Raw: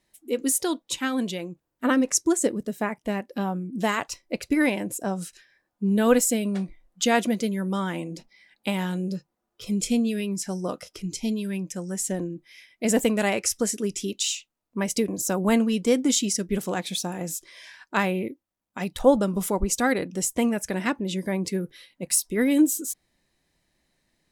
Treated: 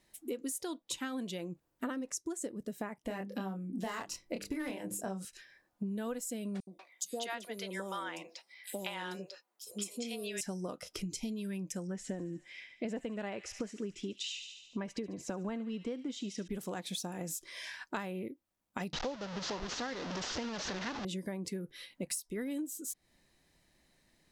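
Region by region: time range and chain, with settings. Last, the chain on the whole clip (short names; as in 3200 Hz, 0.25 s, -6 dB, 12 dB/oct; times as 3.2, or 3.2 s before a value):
3.07–5.25 notches 50/100/150/200/250/300/350/400/450 Hz + overloaded stage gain 17 dB + doubler 26 ms -4 dB
6.6–10.41 HPF 500 Hz + three bands offset in time highs, lows, mids 70/190 ms, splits 630/5700 Hz
11.87–16.48 LPF 3200 Hz + thin delay 72 ms, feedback 64%, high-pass 2100 Hz, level -12 dB
18.93–21.05 delta modulation 32 kbps, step -20.5 dBFS + low shelf 250 Hz -7 dB
whole clip: dynamic EQ 2300 Hz, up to -4 dB, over -45 dBFS, Q 4.2; compressor 12:1, threshold -37 dBFS; gain +1.5 dB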